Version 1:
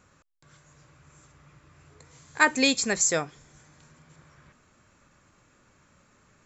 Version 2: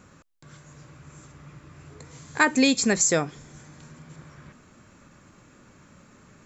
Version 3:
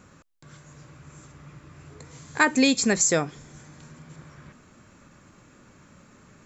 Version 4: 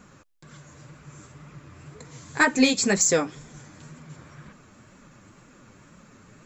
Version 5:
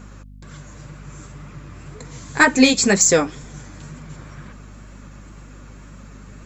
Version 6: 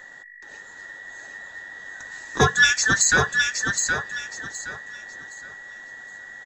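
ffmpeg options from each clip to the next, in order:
-af "equalizer=f=220:t=o:w=1.9:g=6.5,acompressor=threshold=-26dB:ratio=2,volume=5.5dB"
-af anull
-af "acontrast=61,flanger=delay=3.8:depth=7:regen=-4:speed=2:shape=triangular,volume=-2dB"
-af "aeval=exprs='val(0)+0.00501*(sin(2*PI*50*n/s)+sin(2*PI*2*50*n/s)/2+sin(2*PI*3*50*n/s)/3+sin(2*PI*4*50*n/s)/4+sin(2*PI*5*50*n/s)/5)':c=same,volume=6dB"
-filter_complex "[0:a]afftfilt=real='real(if(between(b,1,1012),(2*floor((b-1)/92)+1)*92-b,b),0)':imag='imag(if(between(b,1,1012),(2*floor((b-1)/92)+1)*92-b,b),0)*if(between(b,1,1012),-1,1)':win_size=2048:overlap=0.75,asplit=2[a][b];[b]aecho=0:1:769|1538|2307|3076:0.562|0.157|0.0441|0.0123[c];[a][c]amix=inputs=2:normalize=0,volume=-4dB"

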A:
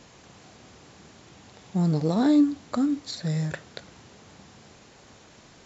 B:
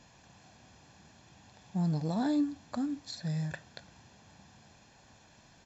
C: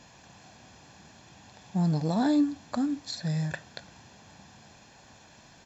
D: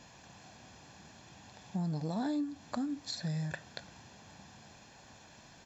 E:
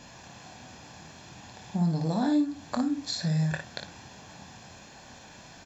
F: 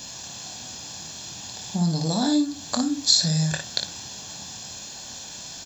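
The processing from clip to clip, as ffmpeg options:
-af "aecho=1:1:1.2:0.49,volume=-8.5dB"
-af "lowshelf=f=130:g=-4.5,volume=6dB"
-af "acompressor=threshold=-32dB:ratio=3,volume=-2dB"
-af "aecho=1:1:24|57:0.376|0.473,volume=6dB"
-af "aexciter=amount=4.9:drive=4.4:freq=3.1k,volume=3dB"

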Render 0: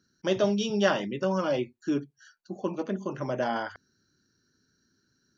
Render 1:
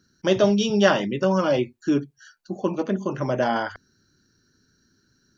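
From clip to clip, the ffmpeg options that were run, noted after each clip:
-af "lowshelf=f=62:g=10,volume=6dB"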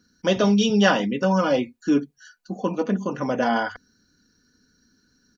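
-af "aecho=1:1:4.1:0.58"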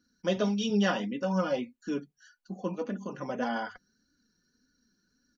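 -af "flanger=delay=3.4:depth=2.3:regen=34:speed=1.7:shape=sinusoidal,volume=-6dB"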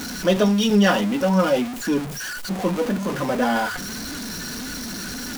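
-af "aeval=exprs='val(0)+0.5*0.0211*sgn(val(0))':c=same,volume=8.5dB"

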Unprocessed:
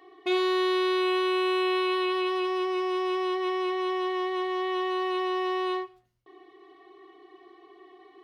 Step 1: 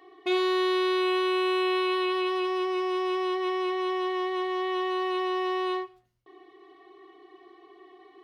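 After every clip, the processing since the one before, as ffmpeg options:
-af anull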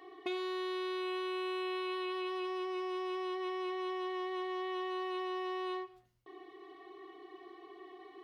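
-af "acompressor=threshold=-37dB:ratio=4"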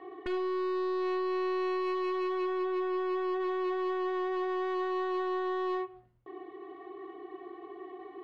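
-af "aeval=exprs='0.0188*(abs(mod(val(0)/0.0188+3,4)-2)-1)':c=same,aresample=11025,aresample=44100,adynamicsmooth=sensitivity=4:basefreq=1.7k,volume=8dB"

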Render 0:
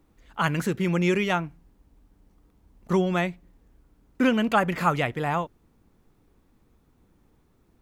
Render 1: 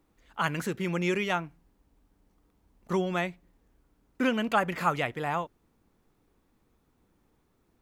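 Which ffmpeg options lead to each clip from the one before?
-af "lowshelf=f=250:g=-6,volume=-3dB"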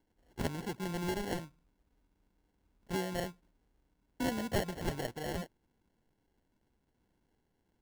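-af "acrusher=samples=36:mix=1:aa=0.000001,volume=-7.5dB"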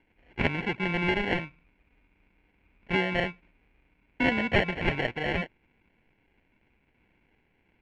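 -af "lowpass=f=2.4k:t=q:w=11,volume=7dB"

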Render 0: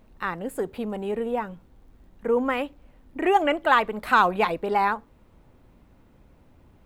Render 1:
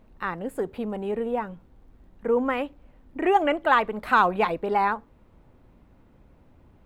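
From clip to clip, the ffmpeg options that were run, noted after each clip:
-af "highshelf=f=3.5k:g=-7"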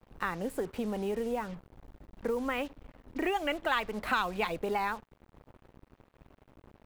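-filter_complex "[0:a]acrossover=split=110|2200[a][b][c];[b]acompressor=threshold=-30dB:ratio=6[d];[a][d][c]amix=inputs=3:normalize=0,acrusher=bits=7:mix=0:aa=0.5"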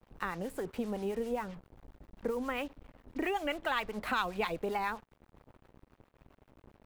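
-filter_complex "[0:a]acrossover=split=770[a][b];[a]aeval=exprs='val(0)*(1-0.5/2+0.5/2*cos(2*PI*7.5*n/s))':c=same[c];[b]aeval=exprs='val(0)*(1-0.5/2-0.5/2*cos(2*PI*7.5*n/s))':c=same[d];[c][d]amix=inputs=2:normalize=0"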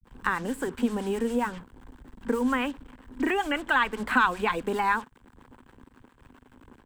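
-filter_complex "[0:a]acrossover=split=2800[a][b];[b]acompressor=threshold=-50dB:ratio=4:attack=1:release=60[c];[a][c]amix=inputs=2:normalize=0,equalizer=f=250:t=o:w=0.33:g=9,equalizer=f=630:t=o:w=0.33:g=-8,equalizer=f=1k:t=o:w=0.33:g=6,equalizer=f=1.6k:t=o:w=0.33:g=8,equalizer=f=3.15k:t=o:w=0.33:g=5,equalizer=f=8k:t=o:w=0.33:g=10,acrossover=split=150[d][e];[e]adelay=40[f];[d][f]amix=inputs=2:normalize=0,volume=6dB"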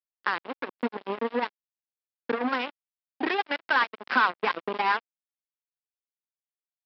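-af "aresample=11025,acrusher=bits=3:mix=0:aa=0.5,aresample=44100,highpass=300,lowpass=3.4k"

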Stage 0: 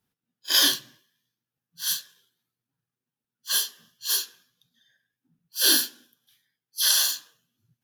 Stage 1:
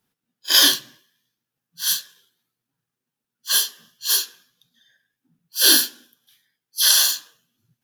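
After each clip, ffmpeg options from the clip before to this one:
-af "equalizer=f=82:w=0.8:g=-6,volume=5.5dB"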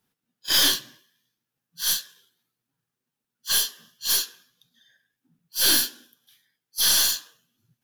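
-af "aeval=exprs='(tanh(5.62*val(0)+0.3)-tanh(0.3))/5.62':c=same"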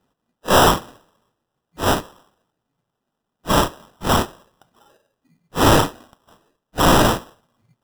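-af "acrusher=samples=20:mix=1:aa=0.000001,volume=6.5dB"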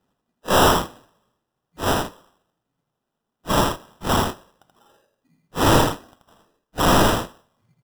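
-af "aecho=1:1:81:0.631,volume=-3.5dB"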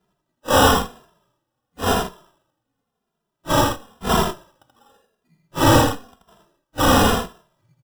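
-filter_complex "[0:a]asplit=2[a][b];[b]adelay=2.5,afreqshift=-0.95[c];[a][c]amix=inputs=2:normalize=1,volume=4.5dB"

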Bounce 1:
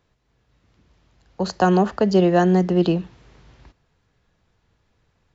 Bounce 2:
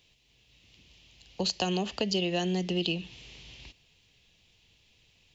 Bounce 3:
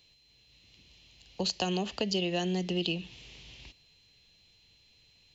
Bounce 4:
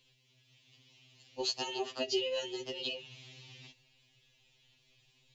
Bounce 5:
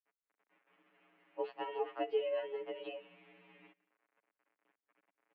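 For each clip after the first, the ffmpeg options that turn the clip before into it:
-af "highshelf=f=2k:t=q:w=3:g=11.5,acompressor=threshold=-24dB:ratio=4,volume=-3.5dB"
-af "aeval=exprs='val(0)+0.000794*sin(2*PI*4100*n/s)':c=same,volume=-1.5dB"
-af "afftfilt=real='re*2.45*eq(mod(b,6),0)':imag='im*2.45*eq(mod(b,6),0)':win_size=2048:overlap=0.75"
-af "acrusher=bits=9:mix=0:aa=0.000001,aecho=1:1:178:0.0708,highpass=f=190:t=q:w=0.5412,highpass=f=190:t=q:w=1.307,lowpass=f=2.2k:t=q:w=0.5176,lowpass=f=2.2k:t=q:w=0.7071,lowpass=f=2.2k:t=q:w=1.932,afreqshift=51"

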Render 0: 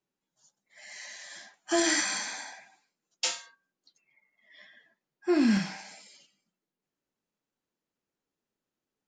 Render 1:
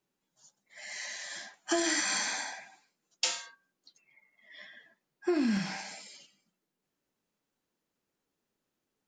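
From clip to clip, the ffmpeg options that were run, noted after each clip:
-af "acompressor=threshold=-30dB:ratio=6,volume=4dB"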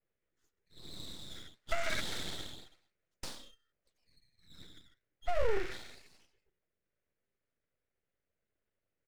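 -af "firequalizer=gain_entry='entry(320,0);entry(610,-29);entry(1700,-1);entry(4300,-23)':delay=0.05:min_phase=1,aeval=exprs='abs(val(0))':c=same,adynamicequalizer=threshold=0.002:dfrequency=4000:dqfactor=0.7:tfrequency=4000:tqfactor=0.7:attack=5:release=100:ratio=0.375:range=2:mode=boostabove:tftype=highshelf,volume=2.5dB"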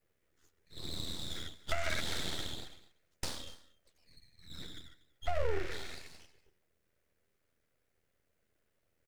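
-af "tremolo=f=82:d=0.462,aecho=1:1:240:0.0841,acompressor=threshold=-46dB:ratio=2,volume=10.5dB"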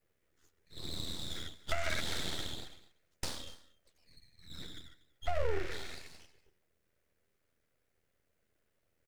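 -af anull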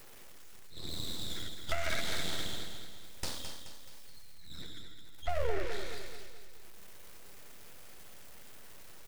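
-af "aeval=exprs='val(0)+0.5*0.00596*sgn(val(0))':c=same,aecho=1:1:214|428|642|856|1070:0.422|0.198|0.0932|0.0438|0.0206"

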